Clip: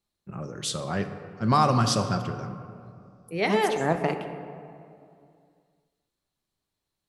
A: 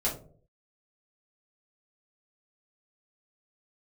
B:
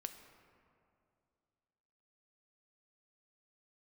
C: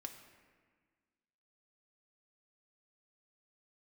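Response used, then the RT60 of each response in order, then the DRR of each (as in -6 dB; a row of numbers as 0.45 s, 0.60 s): B; 0.50 s, 2.5 s, 1.6 s; -6.0 dB, 7.0 dB, 3.5 dB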